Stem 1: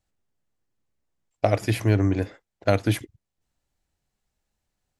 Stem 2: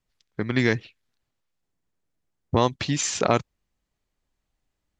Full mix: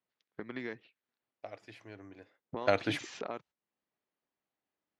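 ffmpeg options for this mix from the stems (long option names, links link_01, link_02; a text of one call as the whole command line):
ffmpeg -i stem1.wav -i stem2.wav -filter_complex "[0:a]highpass=frequency=650:poles=1,volume=-2.5dB[link_01];[1:a]highpass=260,highshelf=frequency=4000:gain=-10,acompressor=threshold=-37dB:ratio=2.5,volume=-5dB,asplit=2[link_02][link_03];[link_03]apad=whole_len=220392[link_04];[link_01][link_04]sidechaingate=range=-18dB:threshold=-57dB:ratio=16:detection=peak[link_05];[link_05][link_02]amix=inputs=2:normalize=0,lowpass=4500" out.wav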